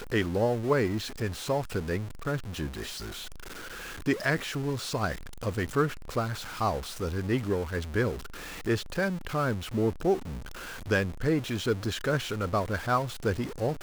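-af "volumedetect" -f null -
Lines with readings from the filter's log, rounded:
mean_volume: -29.9 dB
max_volume: -13.0 dB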